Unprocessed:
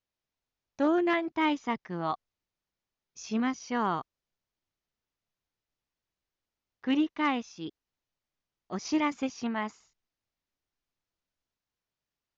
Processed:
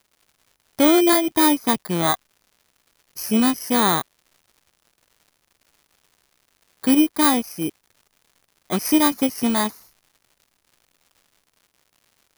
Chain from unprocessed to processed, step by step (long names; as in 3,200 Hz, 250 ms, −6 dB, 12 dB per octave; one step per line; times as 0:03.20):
samples in bit-reversed order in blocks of 16 samples
surface crackle 230 per second −59 dBFS
in parallel at −0.5 dB: downward compressor, threshold −35 dBFS, peak gain reduction 12.5 dB
on the sum: level +8.5 dB